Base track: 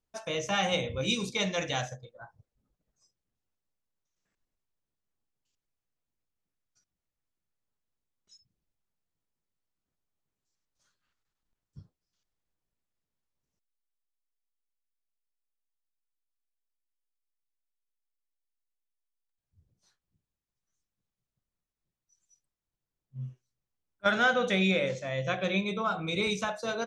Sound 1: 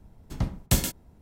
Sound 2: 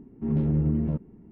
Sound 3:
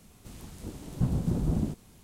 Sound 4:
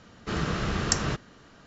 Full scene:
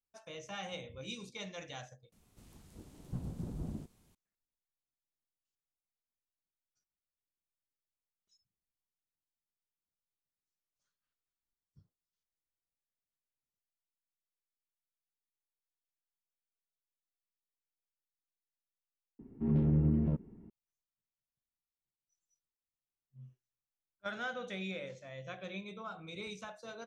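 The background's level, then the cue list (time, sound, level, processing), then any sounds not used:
base track -14.5 dB
2.12 replace with 3 -13 dB
19.19 replace with 2 -4.5 dB
not used: 1, 4

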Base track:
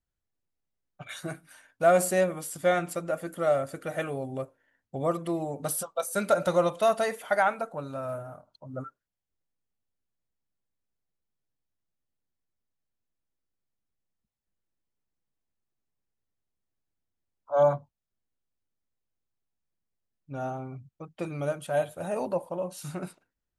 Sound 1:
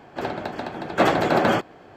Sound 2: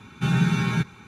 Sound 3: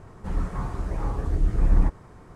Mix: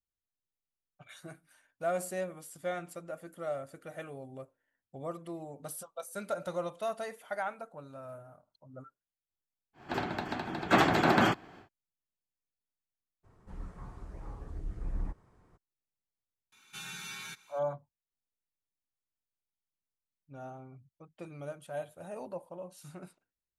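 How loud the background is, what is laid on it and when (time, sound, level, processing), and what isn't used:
base track -11.5 dB
9.73 add 1 -3 dB, fades 0.10 s + bell 530 Hz -9.5 dB 0.68 oct
13.23 add 3 -16.5 dB, fades 0.02 s
16.52 add 2 -2 dB + differentiator

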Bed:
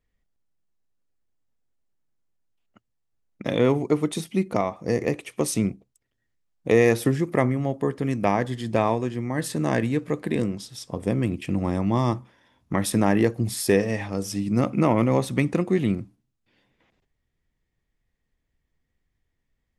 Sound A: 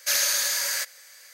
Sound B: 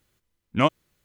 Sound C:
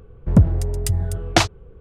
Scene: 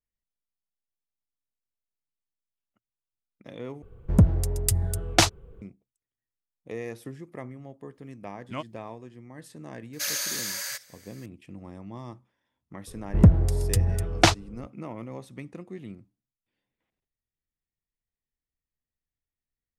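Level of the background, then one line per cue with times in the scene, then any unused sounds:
bed -18 dB
3.82 replace with C -4.5 dB + high shelf 6000 Hz +11 dB
7.94 add B -15 dB
9.93 add A -6.5 dB
12.87 add C -2 dB

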